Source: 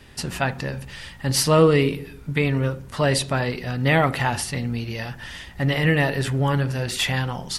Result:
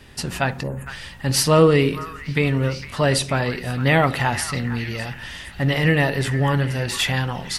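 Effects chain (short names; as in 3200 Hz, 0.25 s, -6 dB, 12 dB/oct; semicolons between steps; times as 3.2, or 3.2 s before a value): spectral delete 0.63–0.87, 1200–6500 Hz; delay with a stepping band-pass 0.458 s, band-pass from 1500 Hz, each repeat 0.7 oct, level -9.5 dB; gain +1.5 dB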